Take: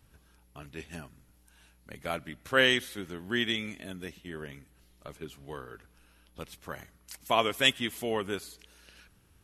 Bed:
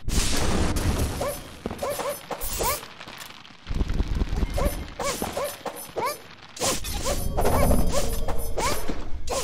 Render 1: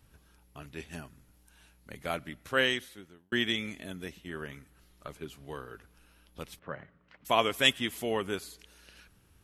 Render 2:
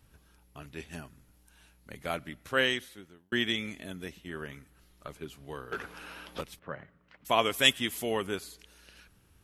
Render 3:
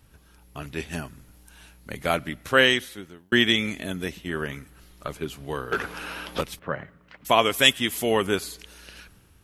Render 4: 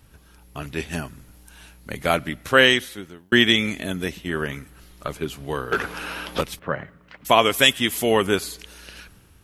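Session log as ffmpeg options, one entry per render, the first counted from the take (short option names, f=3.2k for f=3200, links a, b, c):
-filter_complex "[0:a]asettb=1/sr,asplit=3[a][b][c];[a]atrim=end=4.294[d];[b]atrim=start=4.29:end=5.08,asetpts=PTS-STARTPTS,afade=t=in:d=0.004:c=qsin,afade=t=out:st=0.786:d=0.004:c=qsin,equalizer=f=1.3k:t=o:w=0.76:g=5.5[e];[c]atrim=start=5.076[f];[d][e]acrossfade=d=0.004:c1=hsin:c2=qsin[g];[g][f]acrossfade=d=0.004:c1=qsin:c2=hsin,asettb=1/sr,asplit=3[h][i][j];[h]atrim=end=6.594[k];[i]atrim=start=6.59:end=7.25,asetpts=PTS-STARTPTS,afade=t=in:d=0.004:c=qsin,afade=t=out:st=0.656:d=0.004:c=qsin,highpass=110,equalizer=f=150:t=q:w=4:g=4,equalizer=f=340:t=q:w=4:g=-3,equalizer=f=550:t=q:w=4:g=4,equalizer=f=820:t=q:w=4:g=-4,equalizer=f=2.3k:t=q:w=4:g=-5,lowpass=f=2.5k:w=0.5412,lowpass=f=2.5k:w=1.3066[l];[j]atrim=start=7.246[m];[k][l]acrossfade=d=0.004:c1=hsin:c2=qsin[n];[n][m]acrossfade=d=0.004:c1=qsin:c2=hsin,asplit=2[o][p];[o]atrim=end=3.32,asetpts=PTS-STARTPTS,afade=t=out:st=2.28:d=1.04[q];[p]atrim=start=3.32,asetpts=PTS-STARTPTS,afade=t=in:d=0.004:c=hsin[r];[q][r]concat=n=2:v=0:a=1"
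-filter_complex "[0:a]asettb=1/sr,asplit=3[a][b][c];[a]atrim=end=5.724[d];[b]atrim=start=5.72:end=6.41,asetpts=PTS-STARTPTS,afade=t=in:d=0.004:c=qsin,afade=t=out:st=0.686:d=0.004:c=qsin,asplit=2[e][f];[f]highpass=f=720:p=1,volume=30dB,asoftclip=type=tanh:threshold=-22.5dB[g];[e][g]amix=inputs=2:normalize=0,lowpass=f=1.9k:p=1,volume=-6dB[h];[c]atrim=start=6.406[i];[d][h]acrossfade=d=0.004:c1=hsin:c2=qsin[j];[j][i]acrossfade=d=0.004:c1=qsin:c2=hsin,asettb=1/sr,asplit=3[k][l][m];[k]atrim=end=7.454[n];[l]atrim=start=7.45:end=8.27,asetpts=PTS-STARTPTS,afade=t=in:d=0.004:c=qsin,afade=t=out:st=0.816:d=0.004:c=qsin,highshelf=f=4.9k:g=5.5[o];[m]atrim=start=8.266[p];[n][o]acrossfade=d=0.004:c1=hsin:c2=qsin[q];[q][p]acrossfade=d=0.004:c1=qsin:c2=hsin"
-filter_complex "[0:a]asplit=2[a][b];[b]alimiter=limit=-16.5dB:level=0:latency=1:release=411,volume=-1.5dB[c];[a][c]amix=inputs=2:normalize=0,dynaudnorm=f=160:g=5:m=5dB"
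-af "volume=3.5dB,alimiter=limit=-2dB:level=0:latency=1"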